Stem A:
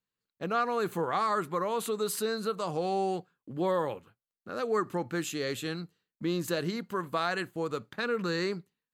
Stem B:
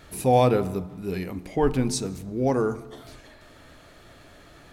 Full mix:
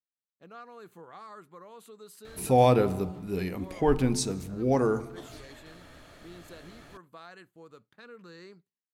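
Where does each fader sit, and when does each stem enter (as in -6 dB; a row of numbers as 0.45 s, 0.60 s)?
-18.0 dB, -1.5 dB; 0.00 s, 2.25 s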